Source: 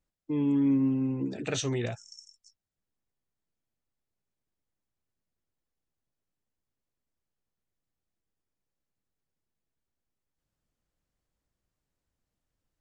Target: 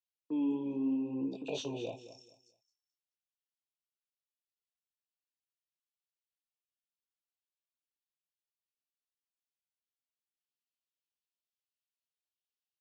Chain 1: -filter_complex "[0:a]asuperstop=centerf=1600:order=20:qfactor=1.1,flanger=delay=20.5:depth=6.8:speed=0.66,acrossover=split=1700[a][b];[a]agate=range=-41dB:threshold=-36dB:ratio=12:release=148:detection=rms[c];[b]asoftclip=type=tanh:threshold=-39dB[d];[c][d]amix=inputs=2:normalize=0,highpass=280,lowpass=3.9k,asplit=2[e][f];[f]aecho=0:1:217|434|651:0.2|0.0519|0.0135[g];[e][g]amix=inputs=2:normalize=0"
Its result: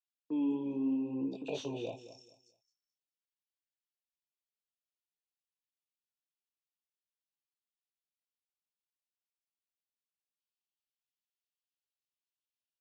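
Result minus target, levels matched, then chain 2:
soft clip: distortion +9 dB
-filter_complex "[0:a]asuperstop=centerf=1600:order=20:qfactor=1.1,flanger=delay=20.5:depth=6.8:speed=0.66,acrossover=split=1700[a][b];[a]agate=range=-41dB:threshold=-36dB:ratio=12:release=148:detection=rms[c];[b]asoftclip=type=tanh:threshold=-30.5dB[d];[c][d]amix=inputs=2:normalize=0,highpass=280,lowpass=3.9k,asplit=2[e][f];[f]aecho=0:1:217|434|651:0.2|0.0519|0.0135[g];[e][g]amix=inputs=2:normalize=0"

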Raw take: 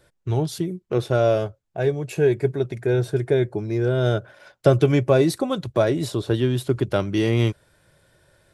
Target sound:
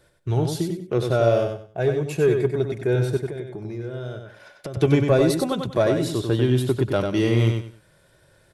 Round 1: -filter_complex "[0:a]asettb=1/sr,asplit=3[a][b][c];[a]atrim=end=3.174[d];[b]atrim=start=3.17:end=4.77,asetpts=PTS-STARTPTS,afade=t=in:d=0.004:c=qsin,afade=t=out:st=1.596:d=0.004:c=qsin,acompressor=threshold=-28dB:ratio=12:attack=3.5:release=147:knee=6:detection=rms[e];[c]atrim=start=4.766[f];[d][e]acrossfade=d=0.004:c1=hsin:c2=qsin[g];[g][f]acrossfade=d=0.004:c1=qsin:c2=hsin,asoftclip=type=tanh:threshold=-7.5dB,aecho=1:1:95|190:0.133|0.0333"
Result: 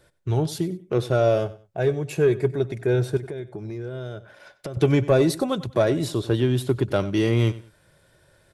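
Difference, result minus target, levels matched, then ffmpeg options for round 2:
echo-to-direct -12 dB
-filter_complex "[0:a]asettb=1/sr,asplit=3[a][b][c];[a]atrim=end=3.174[d];[b]atrim=start=3.17:end=4.77,asetpts=PTS-STARTPTS,afade=t=in:d=0.004:c=qsin,afade=t=out:st=1.596:d=0.004:c=qsin,acompressor=threshold=-28dB:ratio=12:attack=3.5:release=147:knee=6:detection=rms[e];[c]atrim=start=4.766[f];[d][e]acrossfade=d=0.004:c1=hsin:c2=qsin[g];[g][f]acrossfade=d=0.004:c1=qsin:c2=hsin,asoftclip=type=tanh:threshold=-7.5dB,aecho=1:1:95|190|285:0.531|0.133|0.0332"

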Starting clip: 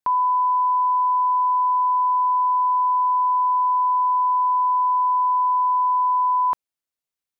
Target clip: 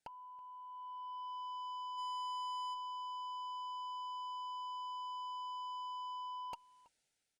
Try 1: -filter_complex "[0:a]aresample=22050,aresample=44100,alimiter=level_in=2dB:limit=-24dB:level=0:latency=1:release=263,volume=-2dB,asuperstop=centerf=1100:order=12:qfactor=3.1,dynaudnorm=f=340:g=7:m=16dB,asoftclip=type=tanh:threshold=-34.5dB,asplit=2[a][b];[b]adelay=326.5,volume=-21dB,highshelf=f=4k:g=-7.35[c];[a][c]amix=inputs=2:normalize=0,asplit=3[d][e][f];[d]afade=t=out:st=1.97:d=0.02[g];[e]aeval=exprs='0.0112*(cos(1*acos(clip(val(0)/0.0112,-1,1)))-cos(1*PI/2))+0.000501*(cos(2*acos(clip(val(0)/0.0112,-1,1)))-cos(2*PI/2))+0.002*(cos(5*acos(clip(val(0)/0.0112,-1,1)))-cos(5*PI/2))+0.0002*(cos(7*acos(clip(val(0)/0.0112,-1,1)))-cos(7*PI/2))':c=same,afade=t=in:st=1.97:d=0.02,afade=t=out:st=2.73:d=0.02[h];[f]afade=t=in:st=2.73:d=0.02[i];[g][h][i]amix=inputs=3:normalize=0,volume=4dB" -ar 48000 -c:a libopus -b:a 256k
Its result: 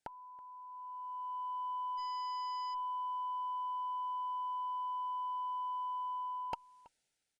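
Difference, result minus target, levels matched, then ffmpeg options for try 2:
soft clip: distortion -8 dB
-filter_complex "[0:a]aresample=22050,aresample=44100,alimiter=level_in=2dB:limit=-24dB:level=0:latency=1:release=263,volume=-2dB,asuperstop=centerf=1100:order=12:qfactor=3.1,dynaudnorm=f=340:g=7:m=16dB,asoftclip=type=tanh:threshold=-45.5dB,asplit=2[a][b];[b]adelay=326.5,volume=-21dB,highshelf=f=4k:g=-7.35[c];[a][c]amix=inputs=2:normalize=0,asplit=3[d][e][f];[d]afade=t=out:st=1.97:d=0.02[g];[e]aeval=exprs='0.0112*(cos(1*acos(clip(val(0)/0.0112,-1,1)))-cos(1*PI/2))+0.000501*(cos(2*acos(clip(val(0)/0.0112,-1,1)))-cos(2*PI/2))+0.002*(cos(5*acos(clip(val(0)/0.0112,-1,1)))-cos(5*PI/2))+0.0002*(cos(7*acos(clip(val(0)/0.0112,-1,1)))-cos(7*PI/2))':c=same,afade=t=in:st=1.97:d=0.02,afade=t=out:st=2.73:d=0.02[h];[f]afade=t=in:st=2.73:d=0.02[i];[g][h][i]amix=inputs=3:normalize=0,volume=4dB" -ar 48000 -c:a libopus -b:a 256k

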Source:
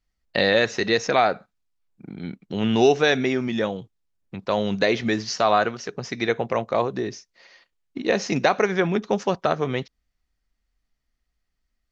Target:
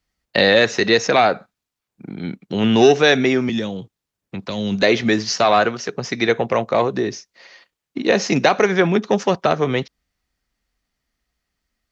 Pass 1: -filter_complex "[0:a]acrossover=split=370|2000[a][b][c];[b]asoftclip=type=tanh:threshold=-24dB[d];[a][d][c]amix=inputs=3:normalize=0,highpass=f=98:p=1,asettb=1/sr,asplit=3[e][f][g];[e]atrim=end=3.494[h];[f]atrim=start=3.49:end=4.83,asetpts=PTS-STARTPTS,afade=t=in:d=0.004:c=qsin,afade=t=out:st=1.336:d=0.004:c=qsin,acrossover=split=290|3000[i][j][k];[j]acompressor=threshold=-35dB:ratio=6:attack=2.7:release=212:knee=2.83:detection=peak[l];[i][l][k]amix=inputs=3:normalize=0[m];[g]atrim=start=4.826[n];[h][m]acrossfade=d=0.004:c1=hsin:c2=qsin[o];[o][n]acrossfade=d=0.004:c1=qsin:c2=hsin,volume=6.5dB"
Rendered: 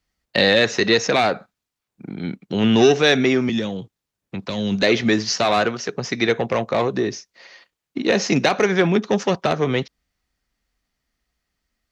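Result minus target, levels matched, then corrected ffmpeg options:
soft clip: distortion +8 dB
-filter_complex "[0:a]acrossover=split=370|2000[a][b][c];[b]asoftclip=type=tanh:threshold=-16dB[d];[a][d][c]amix=inputs=3:normalize=0,highpass=f=98:p=1,asettb=1/sr,asplit=3[e][f][g];[e]atrim=end=3.494[h];[f]atrim=start=3.49:end=4.83,asetpts=PTS-STARTPTS,afade=t=in:d=0.004:c=qsin,afade=t=out:st=1.336:d=0.004:c=qsin,acrossover=split=290|3000[i][j][k];[j]acompressor=threshold=-35dB:ratio=6:attack=2.7:release=212:knee=2.83:detection=peak[l];[i][l][k]amix=inputs=3:normalize=0[m];[g]atrim=start=4.826[n];[h][m]acrossfade=d=0.004:c1=hsin:c2=qsin[o];[o][n]acrossfade=d=0.004:c1=qsin:c2=hsin,volume=6.5dB"

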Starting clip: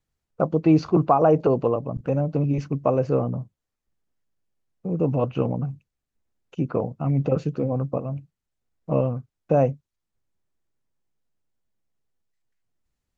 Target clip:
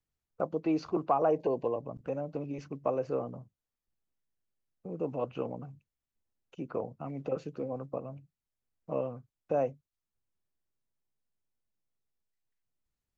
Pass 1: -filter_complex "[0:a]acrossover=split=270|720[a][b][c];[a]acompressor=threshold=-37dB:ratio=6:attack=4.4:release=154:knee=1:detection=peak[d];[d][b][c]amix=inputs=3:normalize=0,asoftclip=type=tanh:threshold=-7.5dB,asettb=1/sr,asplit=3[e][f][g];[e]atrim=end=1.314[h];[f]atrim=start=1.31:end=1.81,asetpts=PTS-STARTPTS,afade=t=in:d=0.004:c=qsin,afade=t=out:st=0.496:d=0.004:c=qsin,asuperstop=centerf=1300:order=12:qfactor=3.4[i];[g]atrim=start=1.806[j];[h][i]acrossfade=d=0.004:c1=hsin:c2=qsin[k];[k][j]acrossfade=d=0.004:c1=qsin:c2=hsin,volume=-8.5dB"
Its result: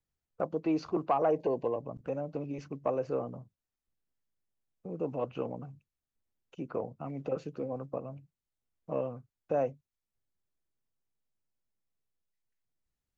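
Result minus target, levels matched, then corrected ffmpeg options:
soft clip: distortion +13 dB
-filter_complex "[0:a]acrossover=split=270|720[a][b][c];[a]acompressor=threshold=-37dB:ratio=6:attack=4.4:release=154:knee=1:detection=peak[d];[d][b][c]amix=inputs=3:normalize=0,asoftclip=type=tanh:threshold=-0.5dB,asettb=1/sr,asplit=3[e][f][g];[e]atrim=end=1.314[h];[f]atrim=start=1.31:end=1.81,asetpts=PTS-STARTPTS,afade=t=in:d=0.004:c=qsin,afade=t=out:st=0.496:d=0.004:c=qsin,asuperstop=centerf=1300:order=12:qfactor=3.4[i];[g]atrim=start=1.806[j];[h][i]acrossfade=d=0.004:c1=hsin:c2=qsin[k];[k][j]acrossfade=d=0.004:c1=qsin:c2=hsin,volume=-8.5dB"

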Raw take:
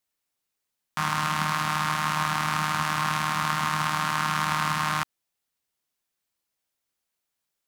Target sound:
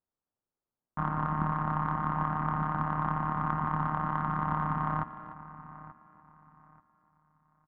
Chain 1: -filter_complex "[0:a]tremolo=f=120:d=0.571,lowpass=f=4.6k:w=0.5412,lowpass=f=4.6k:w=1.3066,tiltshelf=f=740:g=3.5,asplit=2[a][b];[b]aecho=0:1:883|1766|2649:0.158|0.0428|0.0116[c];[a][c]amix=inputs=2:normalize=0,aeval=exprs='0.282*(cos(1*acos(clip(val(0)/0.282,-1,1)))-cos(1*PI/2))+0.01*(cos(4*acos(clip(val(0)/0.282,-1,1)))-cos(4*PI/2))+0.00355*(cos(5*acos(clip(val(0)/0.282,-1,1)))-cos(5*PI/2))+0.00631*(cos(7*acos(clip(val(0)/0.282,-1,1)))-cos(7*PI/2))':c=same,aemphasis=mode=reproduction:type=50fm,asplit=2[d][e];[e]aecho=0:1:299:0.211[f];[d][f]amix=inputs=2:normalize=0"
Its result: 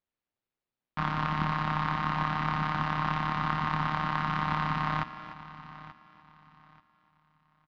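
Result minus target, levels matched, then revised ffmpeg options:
4000 Hz band +20.0 dB
-filter_complex "[0:a]tremolo=f=120:d=0.571,lowpass=f=1.4k:w=0.5412,lowpass=f=1.4k:w=1.3066,tiltshelf=f=740:g=3.5,asplit=2[a][b];[b]aecho=0:1:883|1766|2649:0.158|0.0428|0.0116[c];[a][c]amix=inputs=2:normalize=0,aeval=exprs='0.282*(cos(1*acos(clip(val(0)/0.282,-1,1)))-cos(1*PI/2))+0.01*(cos(4*acos(clip(val(0)/0.282,-1,1)))-cos(4*PI/2))+0.00355*(cos(5*acos(clip(val(0)/0.282,-1,1)))-cos(5*PI/2))+0.00631*(cos(7*acos(clip(val(0)/0.282,-1,1)))-cos(7*PI/2))':c=same,aemphasis=mode=reproduction:type=50fm,asplit=2[d][e];[e]aecho=0:1:299:0.211[f];[d][f]amix=inputs=2:normalize=0"

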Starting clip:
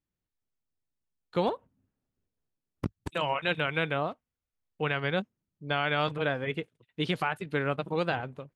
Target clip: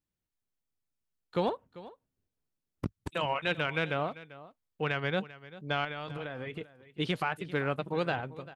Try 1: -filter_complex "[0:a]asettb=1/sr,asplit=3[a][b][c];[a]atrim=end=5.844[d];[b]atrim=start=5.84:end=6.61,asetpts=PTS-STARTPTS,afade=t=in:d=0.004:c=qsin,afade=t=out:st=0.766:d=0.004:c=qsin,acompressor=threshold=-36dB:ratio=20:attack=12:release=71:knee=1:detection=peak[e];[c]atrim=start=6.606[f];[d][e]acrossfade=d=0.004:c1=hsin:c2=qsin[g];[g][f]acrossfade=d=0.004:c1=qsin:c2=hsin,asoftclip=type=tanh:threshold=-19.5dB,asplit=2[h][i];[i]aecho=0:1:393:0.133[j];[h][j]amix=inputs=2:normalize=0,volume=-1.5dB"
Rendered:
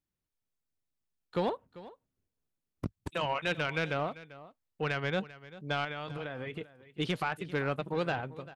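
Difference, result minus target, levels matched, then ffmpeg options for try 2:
soft clip: distortion +11 dB
-filter_complex "[0:a]asettb=1/sr,asplit=3[a][b][c];[a]atrim=end=5.844[d];[b]atrim=start=5.84:end=6.61,asetpts=PTS-STARTPTS,afade=t=in:d=0.004:c=qsin,afade=t=out:st=0.766:d=0.004:c=qsin,acompressor=threshold=-36dB:ratio=20:attack=12:release=71:knee=1:detection=peak[e];[c]atrim=start=6.606[f];[d][e]acrossfade=d=0.004:c1=hsin:c2=qsin[g];[g][f]acrossfade=d=0.004:c1=qsin:c2=hsin,asoftclip=type=tanh:threshold=-12.5dB,asplit=2[h][i];[i]aecho=0:1:393:0.133[j];[h][j]amix=inputs=2:normalize=0,volume=-1.5dB"

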